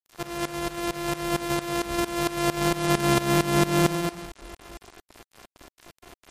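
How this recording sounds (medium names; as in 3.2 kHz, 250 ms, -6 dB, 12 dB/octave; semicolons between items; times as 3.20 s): a buzz of ramps at a fixed pitch in blocks of 128 samples; tremolo saw up 4.4 Hz, depth 90%; a quantiser's noise floor 8-bit, dither none; MP3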